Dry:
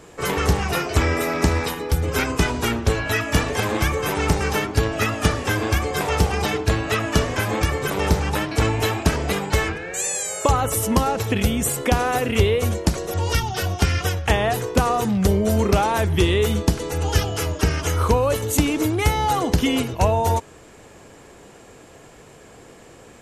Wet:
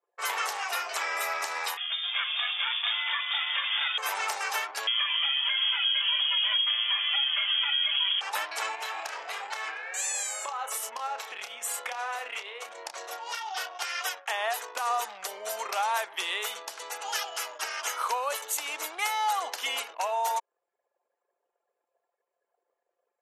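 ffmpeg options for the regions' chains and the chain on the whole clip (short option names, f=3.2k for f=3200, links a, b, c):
-filter_complex "[0:a]asettb=1/sr,asplit=3[a][b][c];[a]atrim=end=1.774[d];[b]atrim=start=1.77:end=3.98,asetpts=PTS-STARTPTS,afade=t=in:d=0.004:c=qsin,afade=t=out:st=2.206:d=0.004:c=qsin,highpass=f=290:p=1,lowpass=f=3.1k:t=q:w=0.5098,lowpass=f=3.1k:t=q:w=0.6013,lowpass=f=3.1k:t=q:w=0.9,lowpass=f=3.1k:t=q:w=2.563,afreqshift=-3700,aecho=1:1:441:0.631,atrim=end_sample=97461[e];[c]atrim=start=3.976[f];[d][e]acrossfade=d=0.004:c1=hsin:c2=qsin[g];[g][f]acrossfade=d=0.004:c1=qsin:c2=hsin,asettb=1/sr,asplit=3[h][i][j];[h]atrim=end=4.874[k];[i]atrim=start=4.87:end=8.21,asetpts=PTS-STARTPTS,afade=t=in:d=0.004:c=qsin,afade=t=out:st=3.336:d=0.004:c=qsin,highpass=f=460:t=q:w=3.4,aecho=1:1:5.2:0.92,atrim=end_sample=147294,lowpass=f=3.1k:t=q:w=0.5098,lowpass=f=3.1k:t=q:w=0.6013,lowpass=f=3.1k:t=q:w=0.9,lowpass=f=3.1k:t=q:w=2.563,afreqshift=-3700[l];[j]atrim=start=8.206[m];[k][l]acrossfade=d=0.004:c1=hsin:c2=qsin[n];[n][m]acrossfade=d=0.004:c1=qsin:c2=hsin,asettb=1/sr,asplit=3[o][p][q];[o]atrim=end=8.754[r];[p]atrim=start=8.75:end=13.82,asetpts=PTS-STARTPTS,afade=t=in:d=0.004:c=qsin,afade=t=out:st=5.066:d=0.004:c=qsin,highshelf=f=9.6k:g=-8.5,acompressor=threshold=-22dB:ratio=10:attack=3.2:release=140:knee=1:detection=peak,asplit=2[s][t];[t]adelay=30,volume=-7dB[u];[s][u]amix=inputs=2:normalize=0,atrim=end_sample=223587[v];[q]atrim=start=13.816[w];[r][v]acrossfade=d=0.004:c1=hsin:c2=qsin[x];[x][w]acrossfade=d=0.004:c1=qsin:c2=hsin,anlmdn=6.31,highpass=f=740:w=0.5412,highpass=f=740:w=1.3066,alimiter=limit=-15dB:level=0:latency=1:release=149,volume=-3.5dB"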